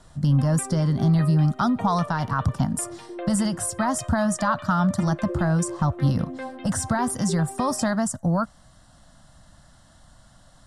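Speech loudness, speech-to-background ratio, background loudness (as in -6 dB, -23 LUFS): -24.0 LUFS, 13.0 dB, -37.0 LUFS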